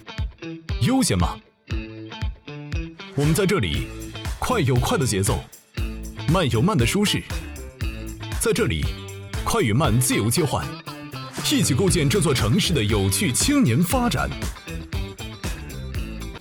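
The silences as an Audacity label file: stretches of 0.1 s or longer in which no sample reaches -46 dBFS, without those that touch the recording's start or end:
1.490000	1.680000	silence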